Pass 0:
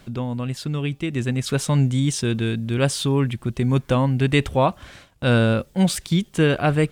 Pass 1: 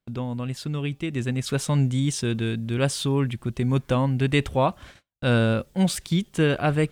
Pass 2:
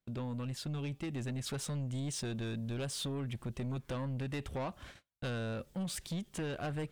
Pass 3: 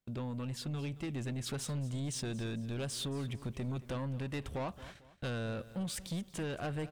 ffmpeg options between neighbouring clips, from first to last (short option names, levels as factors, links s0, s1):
-af "agate=range=0.0251:threshold=0.00891:ratio=16:detection=peak,volume=0.708"
-af "acompressor=threshold=0.0631:ratio=6,asoftclip=type=tanh:threshold=0.0398,volume=0.562"
-af "aecho=1:1:224|448|672:0.141|0.0537|0.0204"